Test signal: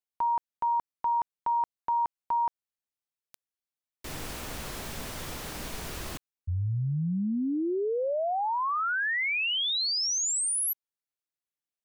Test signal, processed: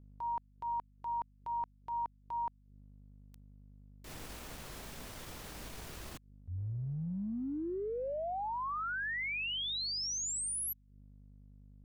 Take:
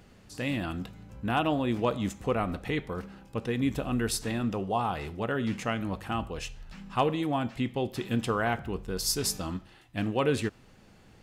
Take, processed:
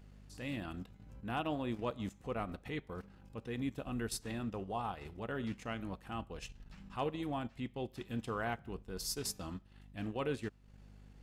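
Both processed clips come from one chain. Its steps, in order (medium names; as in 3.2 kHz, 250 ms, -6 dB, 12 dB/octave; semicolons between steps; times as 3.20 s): hum 50 Hz, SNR 16 dB; transient shaper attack -5 dB, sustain -9 dB; trim -8.5 dB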